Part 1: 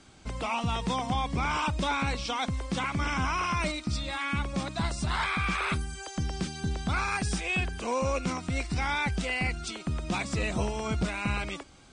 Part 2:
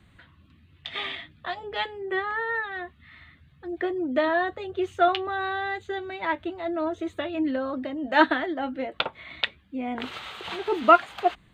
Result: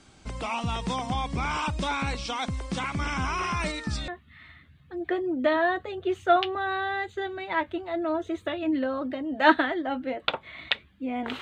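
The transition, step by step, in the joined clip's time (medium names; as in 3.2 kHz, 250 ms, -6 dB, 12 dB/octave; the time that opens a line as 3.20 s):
part 1
3.28 s: add part 2 from 2.00 s 0.80 s -13.5 dB
4.08 s: go over to part 2 from 2.80 s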